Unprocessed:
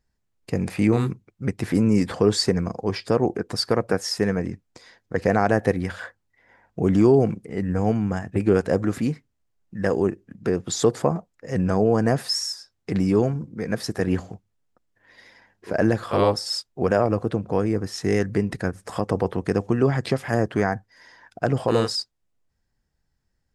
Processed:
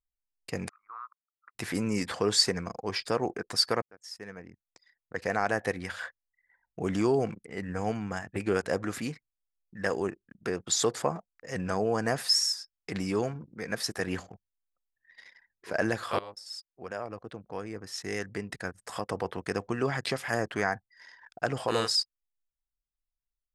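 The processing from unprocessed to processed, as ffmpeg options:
ffmpeg -i in.wav -filter_complex "[0:a]asplit=3[link_01][link_02][link_03];[link_01]afade=type=out:start_time=0.68:duration=0.02[link_04];[link_02]asuperpass=centerf=1200:order=4:qfactor=3.7,afade=type=in:start_time=0.68:duration=0.02,afade=type=out:start_time=1.55:duration=0.02[link_05];[link_03]afade=type=in:start_time=1.55:duration=0.02[link_06];[link_04][link_05][link_06]amix=inputs=3:normalize=0,asplit=3[link_07][link_08][link_09];[link_07]atrim=end=3.82,asetpts=PTS-STARTPTS,afade=type=out:start_time=3.816:duration=0.004:curve=hsin[link_10];[link_08]atrim=start=3.82:end=16.19,asetpts=PTS-STARTPTS,afade=type=in:duration=2.98:curve=qsin,afade=type=out:start_time=12.366:duration=0.004:curve=hsin:silence=0.1[link_11];[link_09]atrim=start=16.19,asetpts=PTS-STARTPTS,afade=type=in:duration=3.53:silence=0.1[link_12];[link_10][link_11][link_12]concat=n=3:v=0:a=1,tiltshelf=frequency=660:gain=-7,anlmdn=0.0398,volume=-6dB" out.wav

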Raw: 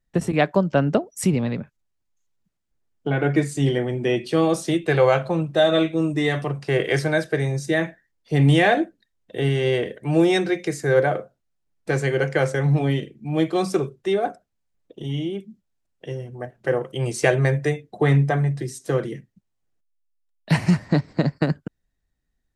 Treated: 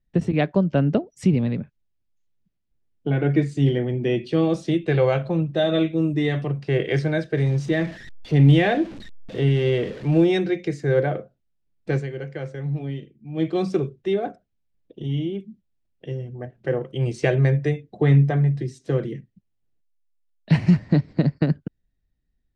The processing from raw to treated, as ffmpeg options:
ffmpeg -i in.wav -filter_complex "[0:a]asettb=1/sr,asplit=3[link_01][link_02][link_03];[link_01]atrim=end=7.374[link_04];[link_02]atrim=start=7.37:end=10.24,asetpts=PTS-STARTPTS,afade=type=in:duration=0.004:curve=qsin,afade=type=out:start_time=2.866:duration=0.004:curve=qsin,aeval=exprs='val(0)+0.5*0.0251*sgn(val(0))':channel_layout=same[link_05];[link_03]atrim=start=10.236[link_06];[link_04][link_05]acrossfade=duration=0.004:curve1=hsin:curve2=qsin[link_07];[link_07][link_06]acrossfade=duration=0.004:curve1=qsin:curve2=hsin,asplit=3[link_08][link_09][link_10];[link_08]atrim=end=12.07,asetpts=PTS-STARTPTS,afade=type=out:start_time=11.95:duration=0.12:silence=0.334965[link_11];[link_09]atrim=start=12.07:end=13.34,asetpts=PTS-STARTPTS,volume=-9.5dB[link_12];[link_10]atrim=start=13.34,asetpts=PTS-STARTPTS,afade=type=in:duration=0.12:silence=0.334965[link_13];[link_11][link_12][link_13]concat=n=3:v=0:a=1,lowpass=3200,equalizer=frequency=1100:width=0.54:gain=-10.5,volume=3dB" out.wav

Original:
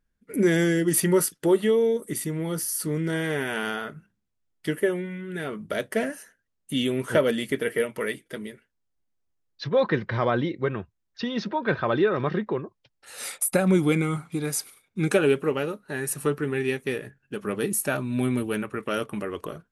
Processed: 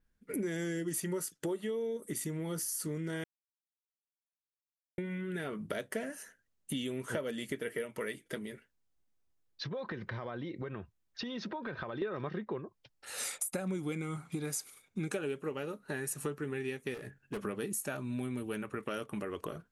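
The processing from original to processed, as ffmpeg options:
ffmpeg -i in.wav -filter_complex "[0:a]asettb=1/sr,asplit=3[link_01][link_02][link_03];[link_01]atrim=end=8.384[link_04];[link_02]atrim=start=8.38:end=12.02,asetpts=PTS-STARTPTS,afade=type=in:duration=0.004:curve=qsin,afade=type=out:start_time=3.636:duration=0.004:curve=qsin,acompressor=threshold=-35dB:ratio=6:attack=3.2:release=140:knee=1:detection=peak[link_05];[link_03]atrim=start=12.016[link_06];[link_04][link_05]acrossfade=duration=0.004:curve1=hsin:curve2=qsin[link_07];[link_07][link_06]acrossfade=duration=0.004:curve1=qsin:curve2=hsin,asettb=1/sr,asplit=3[link_08][link_09][link_10];[link_08]atrim=end=16.944[link_11];[link_09]atrim=start=16.94:end=17.42,asetpts=PTS-STARTPTS,afade=type=in:duration=0.004:curve=qsin,afade=type=out:start_time=0.476:duration=0.004:curve=qsin,volume=32.5dB,asoftclip=hard,volume=-32.5dB[link_12];[link_10]atrim=start=17.416[link_13];[link_11][link_12]acrossfade=duration=0.004:curve1=hsin:curve2=qsin[link_14];[link_14][link_13]acrossfade=duration=0.004:curve1=qsin:curve2=hsin,asplit=3[link_15][link_16][link_17];[link_15]atrim=end=3.24,asetpts=PTS-STARTPTS,afade=type=out:start_time=3.236:duration=0.004:curve=hsin[link_18];[link_16]atrim=start=3.24:end=4.98,asetpts=PTS-STARTPTS,volume=0[link_19];[link_17]atrim=start=4.98,asetpts=PTS-STARTPTS,afade=type=in:duration=0.004:curve=hsin[link_20];[link_18][link_19][link_20]concat=n=3:v=0:a=1,adynamicequalizer=threshold=0.00282:dfrequency=6900:dqfactor=2.8:tfrequency=6900:tqfactor=2.8:attack=5:release=100:ratio=0.375:range=3.5:mode=boostabove:tftype=bell,acompressor=threshold=-35dB:ratio=5" out.wav

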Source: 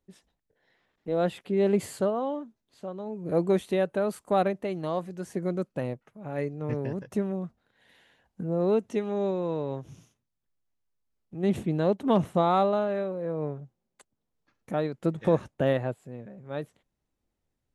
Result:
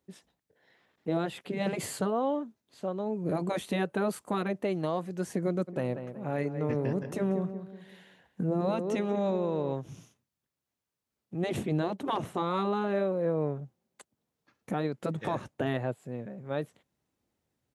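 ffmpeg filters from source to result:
ffmpeg -i in.wav -filter_complex "[0:a]asplit=3[link_01][link_02][link_03];[link_01]afade=type=out:start_time=5.67:duration=0.02[link_04];[link_02]asplit=2[link_05][link_06];[link_06]adelay=186,lowpass=frequency=2300:poles=1,volume=-11.5dB,asplit=2[link_07][link_08];[link_08]adelay=186,lowpass=frequency=2300:poles=1,volume=0.38,asplit=2[link_09][link_10];[link_10]adelay=186,lowpass=frequency=2300:poles=1,volume=0.38,asplit=2[link_11][link_12];[link_12]adelay=186,lowpass=frequency=2300:poles=1,volume=0.38[link_13];[link_05][link_07][link_09][link_11][link_13]amix=inputs=5:normalize=0,afade=type=in:start_time=5.67:duration=0.02,afade=type=out:start_time=9.72:duration=0.02[link_14];[link_03]afade=type=in:start_time=9.72:duration=0.02[link_15];[link_04][link_14][link_15]amix=inputs=3:normalize=0,afftfilt=real='re*lt(hypot(re,im),0.398)':imag='im*lt(hypot(re,im),0.398)':win_size=1024:overlap=0.75,highpass=93,alimiter=limit=-23dB:level=0:latency=1:release=251,volume=3.5dB" out.wav

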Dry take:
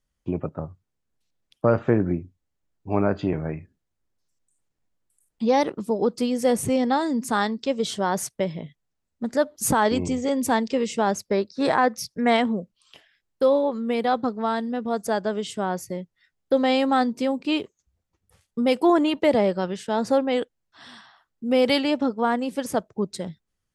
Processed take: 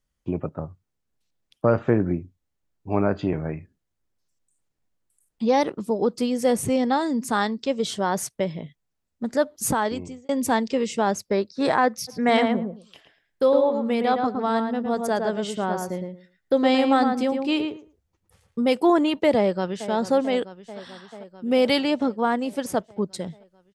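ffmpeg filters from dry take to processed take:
ffmpeg -i in.wav -filter_complex "[0:a]asplit=3[link_01][link_02][link_03];[link_01]afade=type=out:start_time=12.07:duration=0.02[link_04];[link_02]asplit=2[link_05][link_06];[link_06]adelay=111,lowpass=frequency=1800:poles=1,volume=-4dB,asplit=2[link_07][link_08];[link_08]adelay=111,lowpass=frequency=1800:poles=1,volume=0.18,asplit=2[link_09][link_10];[link_10]adelay=111,lowpass=frequency=1800:poles=1,volume=0.18[link_11];[link_05][link_07][link_09][link_11]amix=inputs=4:normalize=0,afade=type=in:start_time=12.07:duration=0.02,afade=type=out:start_time=18.65:duration=0.02[link_12];[link_03]afade=type=in:start_time=18.65:duration=0.02[link_13];[link_04][link_12][link_13]amix=inputs=3:normalize=0,asplit=2[link_14][link_15];[link_15]afade=type=in:start_time=19.36:duration=0.01,afade=type=out:start_time=19.91:duration=0.01,aecho=0:1:440|880|1320|1760|2200|2640|3080|3520|3960|4400|4840:0.223872|0.167904|0.125928|0.094446|0.0708345|0.0531259|0.0398444|0.0298833|0.0224125|0.0168094|0.012607[link_16];[link_14][link_16]amix=inputs=2:normalize=0,asplit=2[link_17][link_18];[link_17]atrim=end=10.29,asetpts=PTS-STARTPTS,afade=type=out:start_time=9.57:duration=0.72[link_19];[link_18]atrim=start=10.29,asetpts=PTS-STARTPTS,afade=type=in:duration=0.004:curve=hsin[link_20];[link_19][link_20]concat=n=2:v=0:a=1" out.wav

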